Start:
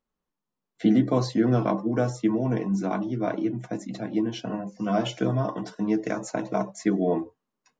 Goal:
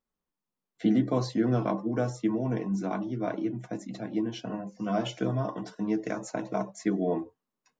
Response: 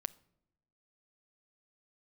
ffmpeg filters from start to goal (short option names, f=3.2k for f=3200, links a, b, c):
-af "volume=-4dB"